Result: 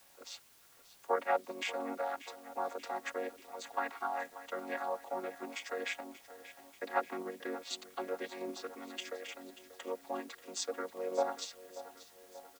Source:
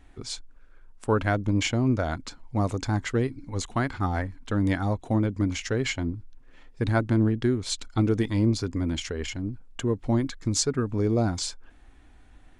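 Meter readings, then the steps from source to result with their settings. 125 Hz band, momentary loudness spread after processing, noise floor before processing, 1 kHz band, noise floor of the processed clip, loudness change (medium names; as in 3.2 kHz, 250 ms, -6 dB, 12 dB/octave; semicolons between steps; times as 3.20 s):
under -40 dB, 16 LU, -53 dBFS, -3.5 dB, -62 dBFS, -12.5 dB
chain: vocoder on a held chord major triad, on F#3; high-pass 560 Hz 24 dB/octave; in parallel at +2.5 dB: level held to a coarse grid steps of 11 dB; on the sum: word length cut 10-bit, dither triangular; on a send: feedback delay 585 ms, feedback 56%, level -15.5 dB; on the sum: trim -3 dB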